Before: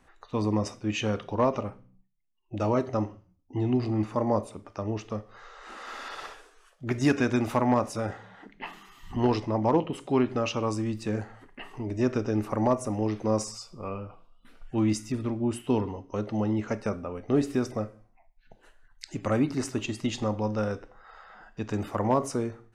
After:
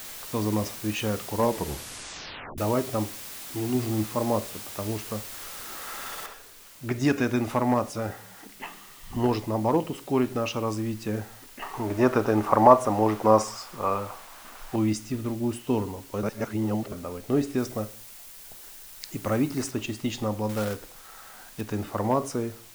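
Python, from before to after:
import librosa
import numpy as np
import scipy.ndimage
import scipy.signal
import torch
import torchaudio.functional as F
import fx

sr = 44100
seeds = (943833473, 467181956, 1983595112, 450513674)

y = fx.peak_eq(x, sr, hz=100.0, db=-5.5, octaves=2.0, at=(3.08, 3.75))
y = fx.noise_floor_step(y, sr, seeds[0], at_s=6.26, before_db=-40, after_db=-50, tilt_db=0.0)
y = fx.peak_eq(y, sr, hz=980.0, db=14.0, octaves=2.0, at=(11.62, 14.76))
y = fx.high_shelf(y, sr, hz=6700.0, db=6.0, at=(17.58, 19.71))
y = fx.quant_companded(y, sr, bits=4, at=(20.49, 21.61))
y = fx.edit(y, sr, fx.tape_stop(start_s=1.35, length_s=1.23),
    fx.reverse_span(start_s=16.23, length_s=0.69), tone=tone)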